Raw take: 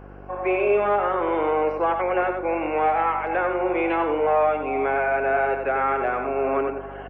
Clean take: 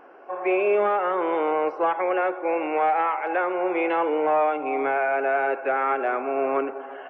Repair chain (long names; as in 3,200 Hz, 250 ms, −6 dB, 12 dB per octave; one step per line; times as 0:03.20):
hum removal 49 Hz, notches 11
echo removal 93 ms −6.5 dB